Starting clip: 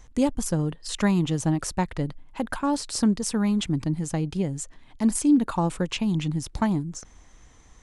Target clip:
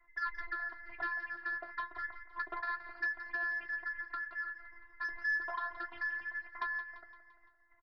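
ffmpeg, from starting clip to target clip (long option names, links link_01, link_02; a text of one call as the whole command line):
ffmpeg -i in.wav -filter_complex "[0:a]afftfilt=real='real(if(between(b,1,1012),(2*floor((b-1)/92)+1)*92-b,b),0)':imag='imag(if(between(b,1,1012),(2*floor((b-1)/92)+1)*92-b,b),0)*if(between(b,1,1012),-1,1)':win_size=2048:overlap=0.75,agate=range=-33dB:threshold=-43dB:ratio=3:detection=peak,lowpass=frequency=1200:width=0.5412,lowpass=frequency=1200:width=1.3066,tiltshelf=frequency=870:gain=-8.5,acrossover=split=100|700[link_01][link_02][link_03];[link_02]acompressor=threshold=-47dB:ratio=4[link_04];[link_03]acompressor=threshold=-33dB:ratio=4[link_05];[link_01][link_04][link_05]amix=inputs=3:normalize=0,afftfilt=real='hypot(re,im)*cos(PI*b)':imag='0':win_size=512:overlap=0.75,aresample=11025,asoftclip=type=tanh:threshold=-29dB,aresample=44100,flanger=delay=7.5:depth=6.7:regen=-55:speed=0.29:shape=sinusoidal,asplit=2[link_06][link_07];[link_07]aecho=0:1:171|342|513|684|855:0.224|0.119|0.0629|0.0333|0.0177[link_08];[link_06][link_08]amix=inputs=2:normalize=0,volume=5.5dB" out.wav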